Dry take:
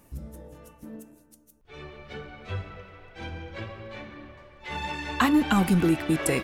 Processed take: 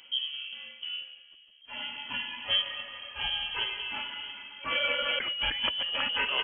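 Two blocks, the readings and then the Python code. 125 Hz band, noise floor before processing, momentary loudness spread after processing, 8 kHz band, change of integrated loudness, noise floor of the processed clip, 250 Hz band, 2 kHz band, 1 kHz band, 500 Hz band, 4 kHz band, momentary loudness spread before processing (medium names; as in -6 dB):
-23.5 dB, -59 dBFS, 11 LU, under -40 dB, -4.5 dB, -56 dBFS, -26.0 dB, +2.0 dB, -6.0 dB, -8.0 dB, +13.5 dB, 22 LU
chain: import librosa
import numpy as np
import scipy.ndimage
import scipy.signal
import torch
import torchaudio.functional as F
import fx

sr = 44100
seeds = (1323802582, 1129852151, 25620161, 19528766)

y = fx.over_compress(x, sr, threshold_db=-29.0, ratio=-1.0)
y = fx.freq_invert(y, sr, carrier_hz=3200)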